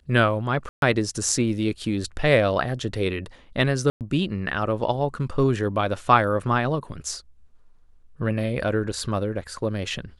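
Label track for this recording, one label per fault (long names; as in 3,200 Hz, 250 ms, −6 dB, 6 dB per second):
0.690000	0.820000	drop-out 132 ms
3.900000	4.010000	drop-out 108 ms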